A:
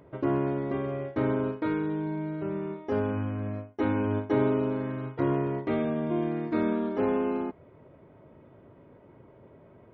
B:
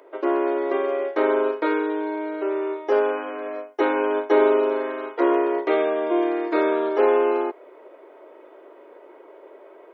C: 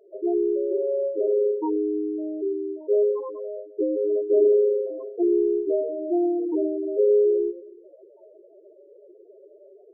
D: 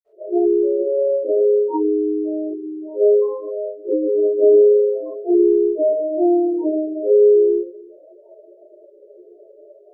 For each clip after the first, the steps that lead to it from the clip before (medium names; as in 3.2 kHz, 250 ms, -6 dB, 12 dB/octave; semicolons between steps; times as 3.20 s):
steep high-pass 340 Hz 48 dB/octave; level rider gain up to 3 dB; trim +7.5 dB
echo whose repeats swap between lows and highs 108 ms, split 860 Hz, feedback 58%, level -11 dB; loudest bins only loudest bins 4
reverberation, pre-delay 48 ms